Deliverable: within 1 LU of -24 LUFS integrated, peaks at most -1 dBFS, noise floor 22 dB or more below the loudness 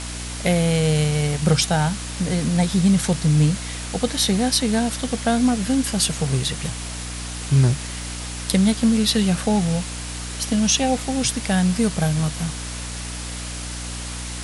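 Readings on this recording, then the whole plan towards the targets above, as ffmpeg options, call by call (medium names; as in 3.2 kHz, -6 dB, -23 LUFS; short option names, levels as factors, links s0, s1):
hum 60 Hz; highest harmonic 300 Hz; hum level -31 dBFS; noise floor -31 dBFS; noise floor target -44 dBFS; loudness -21.5 LUFS; peak level -1.5 dBFS; loudness target -24.0 LUFS
-> -af "bandreject=f=60:t=h:w=4,bandreject=f=120:t=h:w=4,bandreject=f=180:t=h:w=4,bandreject=f=240:t=h:w=4,bandreject=f=300:t=h:w=4"
-af "afftdn=nr=13:nf=-31"
-af "volume=0.75"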